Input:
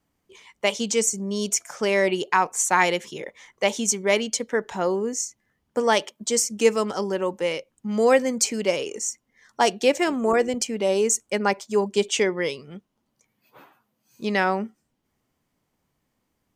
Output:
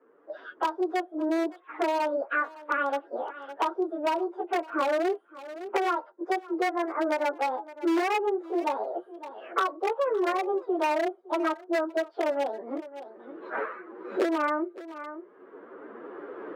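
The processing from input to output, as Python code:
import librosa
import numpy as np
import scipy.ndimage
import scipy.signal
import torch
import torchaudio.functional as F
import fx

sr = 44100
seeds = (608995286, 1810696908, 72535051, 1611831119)

p1 = fx.pitch_bins(x, sr, semitones=8.0)
p2 = fx.recorder_agc(p1, sr, target_db=-12.5, rise_db_per_s=14.0, max_gain_db=30)
p3 = scipy.signal.sosfilt(scipy.signal.butter(4, 1200.0, 'lowpass', fs=sr, output='sos'), p2)
p4 = np.clip(10.0 ** (17.5 / 20.0) * p3, -1.0, 1.0) / 10.0 ** (17.5 / 20.0)
p5 = scipy.signal.sosfilt(scipy.signal.butter(4, 380.0, 'highpass', fs=sr, output='sos'), p4)
p6 = fx.peak_eq(p5, sr, hz=770.0, db=-13.5, octaves=0.99)
p7 = p6 + fx.echo_single(p6, sr, ms=561, db=-23.5, dry=0)
p8 = fx.band_squash(p7, sr, depth_pct=70)
y = F.gain(torch.from_numpy(p8), 6.0).numpy()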